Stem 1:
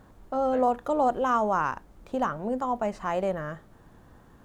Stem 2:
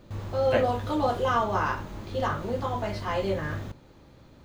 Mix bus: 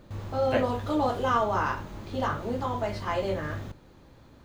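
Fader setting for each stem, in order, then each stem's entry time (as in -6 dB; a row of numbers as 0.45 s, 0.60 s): -7.0 dB, -1.5 dB; 0.00 s, 0.00 s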